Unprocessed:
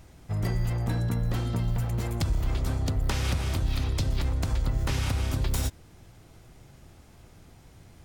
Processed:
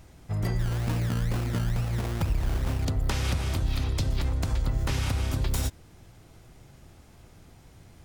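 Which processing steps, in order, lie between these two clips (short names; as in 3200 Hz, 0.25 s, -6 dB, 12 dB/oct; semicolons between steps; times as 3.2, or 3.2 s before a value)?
0.59–2.85 decimation with a swept rate 23×, swing 60% 2.2 Hz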